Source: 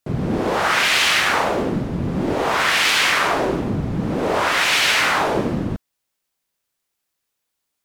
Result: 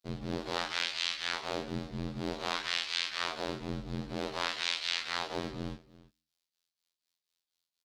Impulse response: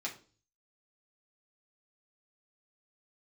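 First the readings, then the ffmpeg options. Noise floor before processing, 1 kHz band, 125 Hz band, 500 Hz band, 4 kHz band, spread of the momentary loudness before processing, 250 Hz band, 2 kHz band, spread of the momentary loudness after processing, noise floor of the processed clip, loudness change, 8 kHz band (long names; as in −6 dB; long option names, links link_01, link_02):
−78 dBFS, −19.0 dB, −16.0 dB, −17.5 dB, −13.0 dB, 9 LU, −16.5 dB, −19.0 dB, 7 LU, below −85 dBFS, −16.5 dB, −18.5 dB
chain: -filter_complex "[0:a]acrossover=split=9100[link_01][link_02];[link_02]acompressor=threshold=-49dB:ratio=4:attack=1:release=60[link_03];[link_01][link_03]amix=inputs=2:normalize=0,equalizer=frequency=4200:width_type=o:width=1.2:gain=14,bandreject=frequency=127.5:width_type=h:width=4,bandreject=frequency=255:width_type=h:width=4,bandreject=frequency=382.5:width_type=h:width=4,acompressor=threshold=-16dB:ratio=10,afftfilt=real='hypot(re,im)*cos(PI*b)':imag='0':win_size=2048:overlap=0.75,aeval=exprs='val(0)*sin(2*PI*41*n/s)':channel_layout=same,asplit=2[link_04][link_05];[link_05]aecho=0:1:333:0.106[link_06];[link_04][link_06]amix=inputs=2:normalize=0,volume=-9dB"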